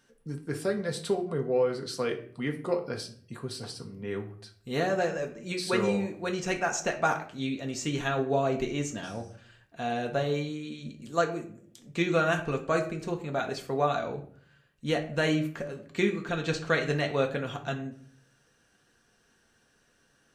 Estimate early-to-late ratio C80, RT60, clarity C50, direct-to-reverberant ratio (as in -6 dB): 15.5 dB, 0.50 s, 11.0 dB, 2.0 dB